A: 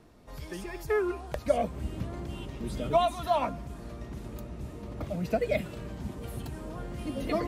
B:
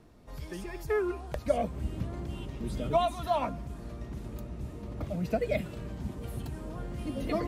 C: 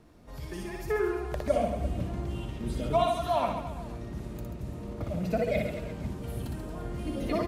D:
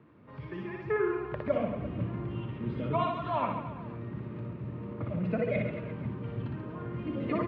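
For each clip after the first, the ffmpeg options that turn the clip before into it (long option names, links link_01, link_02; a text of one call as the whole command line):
ffmpeg -i in.wav -af "lowshelf=frequency=260:gain=4,volume=-2.5dB" out.wav
ffmpeg -i in.wav -af "aecho=1:1:60|135|228.8|345.9|492.4:0.631|0.398|0.251|0.158|0.1" out.wav
ffmpeg -i in.wav -af "highpass=frequency=100:width=0.5412,highpass=frequency=100:width=1.3066,equalizer=frequency=120:width_type=q:width=4:gain=5,equalizer=frequency=710:width_type=q:width=4:gain=-9,equalizer=frequency=1100:width_type=q:width=4:gain=4,lowpass=frequency=2700:width=0.5412,lowpass=frequency=2700:width=1.3066" out.wav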